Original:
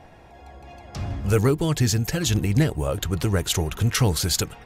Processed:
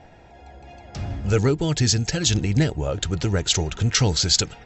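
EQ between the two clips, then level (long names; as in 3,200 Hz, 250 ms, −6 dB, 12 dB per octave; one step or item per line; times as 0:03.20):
notch filter 1,100 Hz, Q 6.5
dynamic equaliser 4,900 Hz, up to +7 dB, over −39 dBFS, Q 1
linear-phase brick-wall low-pass 7,900 Hz
0.0 dB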